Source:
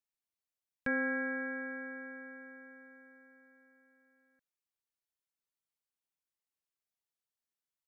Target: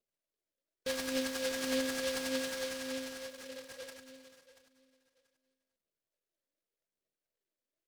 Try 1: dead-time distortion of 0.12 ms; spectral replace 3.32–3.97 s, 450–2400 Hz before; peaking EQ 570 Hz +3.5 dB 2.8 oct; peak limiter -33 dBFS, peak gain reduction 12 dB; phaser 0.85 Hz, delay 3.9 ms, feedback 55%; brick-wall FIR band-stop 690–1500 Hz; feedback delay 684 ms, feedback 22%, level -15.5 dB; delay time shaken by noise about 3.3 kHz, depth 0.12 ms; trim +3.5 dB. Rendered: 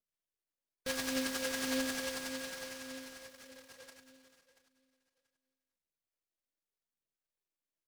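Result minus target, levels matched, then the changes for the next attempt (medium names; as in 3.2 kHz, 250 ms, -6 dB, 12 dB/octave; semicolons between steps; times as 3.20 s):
500 Hz band -4.5 dB
change: peaking EQ 570 Hz +14 dB 2.8 oct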